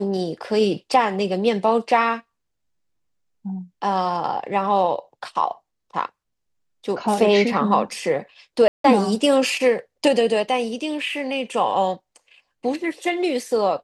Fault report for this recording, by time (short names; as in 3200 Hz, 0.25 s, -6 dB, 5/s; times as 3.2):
8.68–8.84 gap 0.163 s